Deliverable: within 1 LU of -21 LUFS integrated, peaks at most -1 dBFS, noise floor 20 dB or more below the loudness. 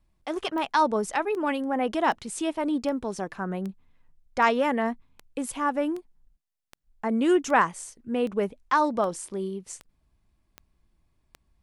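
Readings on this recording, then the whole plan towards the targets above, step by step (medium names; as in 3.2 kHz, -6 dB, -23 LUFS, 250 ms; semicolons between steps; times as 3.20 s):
clicks found 15; loudness -27.0 LUFS; peak level -8.5 dBFS; loudness target -21.0 LUFS
-> de-click; trim +6 dB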